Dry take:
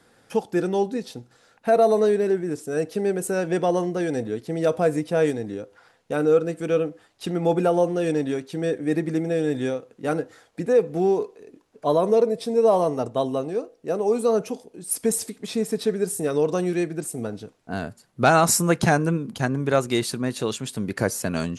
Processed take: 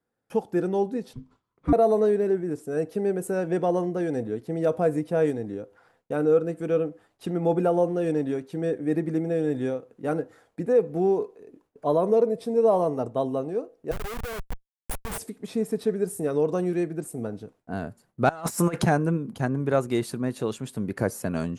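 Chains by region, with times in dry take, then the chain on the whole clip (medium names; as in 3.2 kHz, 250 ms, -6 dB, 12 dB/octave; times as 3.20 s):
1.13–1.73 s: frequency shift -380 Hz + distance through air 72 m
13.91–15.18 s: Schmitt trigger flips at -23 dBFS + peaking EQ 290 Hz -14 dB 1.8 oct
18.29–18.83 s: overdrive pedal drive 10 dB, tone 8 kHz, clips at -5 dBFS + compressor with a negative ratio -23 dBFS, ratio -0.5
whole clip: gate with hold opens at -46 dBFS; peaking EQ 4.9 kHz -10 dB 2.7 oct; trim -1.5 dB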